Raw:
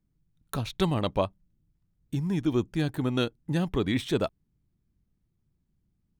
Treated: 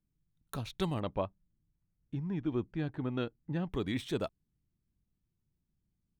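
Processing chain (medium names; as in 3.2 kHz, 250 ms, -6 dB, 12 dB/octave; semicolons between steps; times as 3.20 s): 1.00–3.72 s: low-pass 2.5 kHz 12 dB/octave; trim -7.5 dB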